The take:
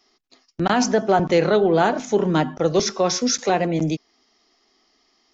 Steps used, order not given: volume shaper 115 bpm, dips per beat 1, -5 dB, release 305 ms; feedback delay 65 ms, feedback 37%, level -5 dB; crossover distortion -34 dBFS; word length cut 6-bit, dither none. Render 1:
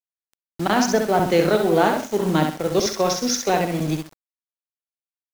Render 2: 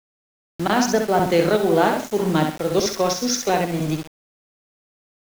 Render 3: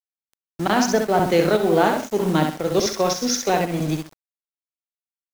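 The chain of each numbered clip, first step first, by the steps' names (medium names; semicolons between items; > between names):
volume shaper > feedback delay > word length cut > crossover distortion; feedback delay > crossover distortion > volume shaper > word length cut; feedback delay > word length cut > volume shaper > crossover distortion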